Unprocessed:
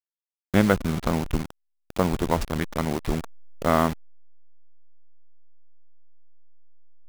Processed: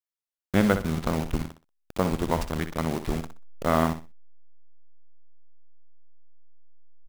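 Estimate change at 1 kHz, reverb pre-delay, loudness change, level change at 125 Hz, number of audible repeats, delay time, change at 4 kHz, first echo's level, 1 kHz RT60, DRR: −2.0 dB, no reverb audible, −2.0 dB, −1.5 dB, 2, 62 ms, −2.0 dB, −10.0 dB, no reverb audible, no reverb audible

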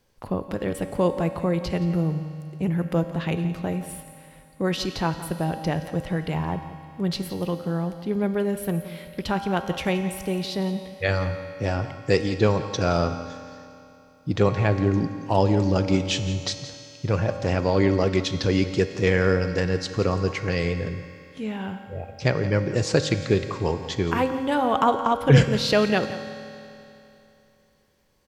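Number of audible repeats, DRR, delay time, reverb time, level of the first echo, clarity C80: 1, 7.0 dB, 172 ms, 2.9 s, −15.0 dB, 8.5 dB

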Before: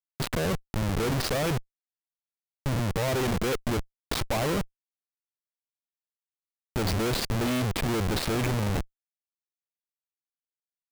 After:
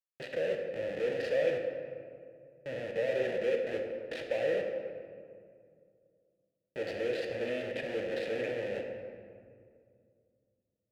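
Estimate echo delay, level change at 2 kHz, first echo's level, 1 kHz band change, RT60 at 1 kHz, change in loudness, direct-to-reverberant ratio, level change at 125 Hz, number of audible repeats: no echo audible, −5.0 dB, no echo audible, −15.0 dB, 2.0 s, −5.5 dB, 2.0 dB, −21.5 dB, no echo audible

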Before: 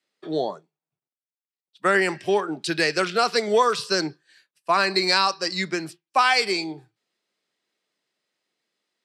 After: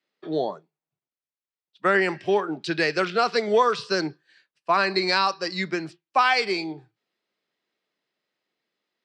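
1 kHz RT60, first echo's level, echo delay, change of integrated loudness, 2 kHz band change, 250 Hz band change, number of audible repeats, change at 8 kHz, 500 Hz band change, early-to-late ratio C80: no reverb audible, no echo audible, no echo audible, −1.0 dB, −1.0 dB, 0.0 dB, no echo audible, −9.0 dB, −0.5 dB, no reverb audible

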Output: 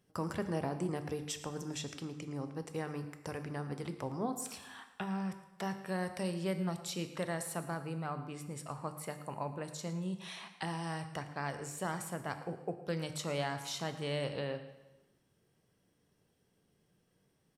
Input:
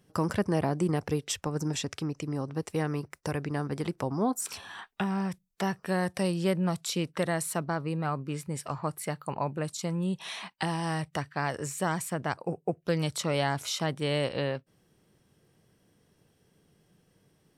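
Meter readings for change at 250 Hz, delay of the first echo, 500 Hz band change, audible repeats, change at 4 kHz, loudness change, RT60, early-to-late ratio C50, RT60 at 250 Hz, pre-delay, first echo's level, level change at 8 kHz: −8.0 dB, 112 ms, −7.5 dB, 1, −7.5 dB, −8.0 dB, 1.1 s, 10.0 dB, 1.1 s, 6 ms, −16.5 dB, −7.5 dB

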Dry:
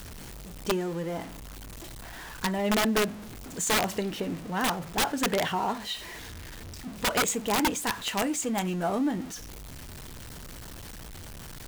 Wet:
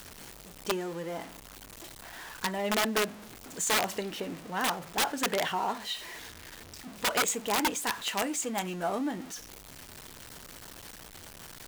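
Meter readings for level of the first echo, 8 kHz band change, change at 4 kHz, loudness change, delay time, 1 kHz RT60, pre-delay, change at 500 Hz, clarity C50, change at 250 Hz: no echo audible, −1.0 dB, −1.0 dB, −2.5 dB, no echo audible, no reverb audible, no reverb audible, −3.0 dB, no reverb audible, −6.0 dB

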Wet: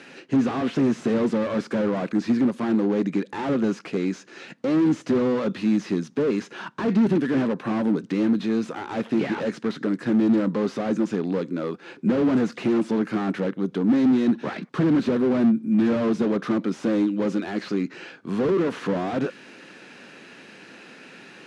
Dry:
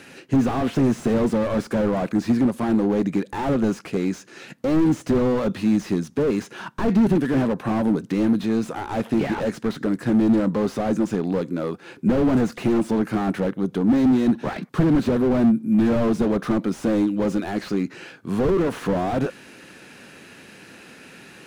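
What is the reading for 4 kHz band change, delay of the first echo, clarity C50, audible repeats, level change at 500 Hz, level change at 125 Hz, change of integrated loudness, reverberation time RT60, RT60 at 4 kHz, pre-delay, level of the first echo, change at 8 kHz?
−1.0 dB, no echo audible, no reverb audible, no echo audible, −1.5 dB, −4.5 dB, −1.5 dB, no reverb audible, no reverb audible, no reverb audible, no echo audible, can't be measured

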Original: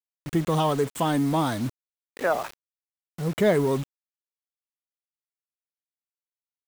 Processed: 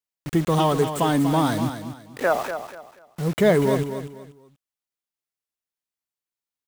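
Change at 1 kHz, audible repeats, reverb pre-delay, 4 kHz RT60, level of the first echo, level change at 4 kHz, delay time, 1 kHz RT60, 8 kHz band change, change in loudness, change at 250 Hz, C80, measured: +3.5 dB, 3, no reverb audible, no reverb audible, −9.5 dB, +3.5 dB, 241 ms, no reverb audible, +3.5 dB, +3.0 dB, +3.5 dB, no reverb audible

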